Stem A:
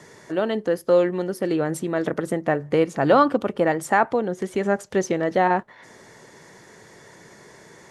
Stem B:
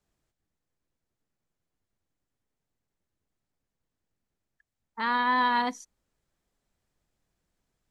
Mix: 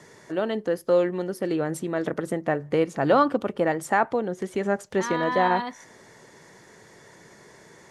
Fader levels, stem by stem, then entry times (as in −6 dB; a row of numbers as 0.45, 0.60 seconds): −3.0, −4.0 decibels; 0.00, 0.00 seconds